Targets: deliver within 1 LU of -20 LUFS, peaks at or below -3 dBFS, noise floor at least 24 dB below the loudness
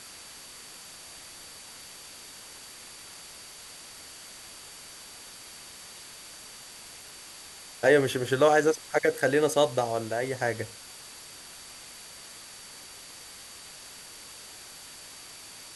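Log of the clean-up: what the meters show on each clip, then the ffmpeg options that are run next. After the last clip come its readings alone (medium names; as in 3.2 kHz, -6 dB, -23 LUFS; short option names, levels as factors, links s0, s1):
steady tone 4.6 kHz; tone level -52 dBFS; noise floor -47 dBFS; noise floor target -50 dBFS; loudness -25.5 LUFS; peak level -9.0 dBFS; loudness target -20.0 LUFS
-> -af "bandreject=f=4600:w=30"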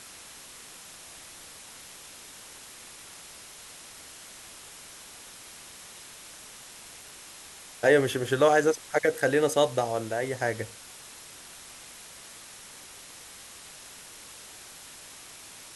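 steady tone not found; noise floor -47 dBFS; noise floor target -50 dBFS
-> -af "afftdn=nr=6:nf=-47"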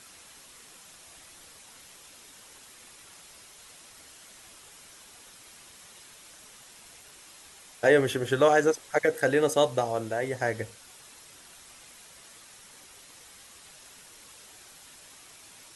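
noise floor -52 dBFS; loudness -25.5 LUFS; peak level -9.0 dBFS; loudness target -20.0 LUFS
-> -af "volume=1.88"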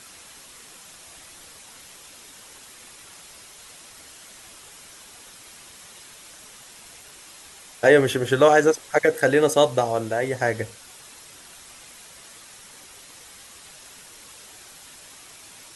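loudness -20.0 LUFS; peak level -3.5 dBFS; noise floor -46 dBFS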